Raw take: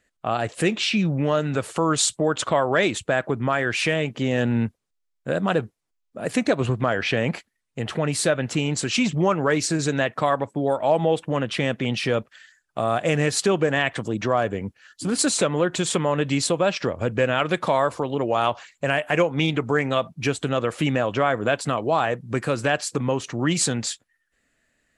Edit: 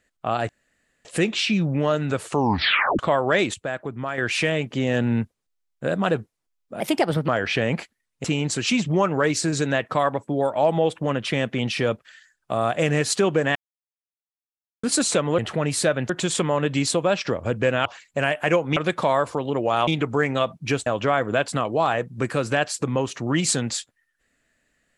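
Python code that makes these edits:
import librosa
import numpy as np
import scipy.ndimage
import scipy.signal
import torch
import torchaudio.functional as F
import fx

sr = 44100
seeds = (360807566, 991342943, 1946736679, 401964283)

y = fx.edit(x, sr, fx.insert_room_tone(at_s=0.49, length_s=0.56),
    fx.tape_stop(start_s=1.73, length_s=0.7),
    fx.clip_gain(start_s=2.98, length_s=0.64, db=-6.5),
    fx.speed_span(start_s=6.24, length_s=0.6, speed=1.24),
    fx.move(start_s=7.8, length_s=0.71, to_s=15.65),
    fx.silence(start_s=13.82, length_s=1.28),
    fx.move(start_s=18.52, length_s=0.91, to_s=17.41),
    fx.cut(start_s=20.42, length_s=0.57), tone=tone)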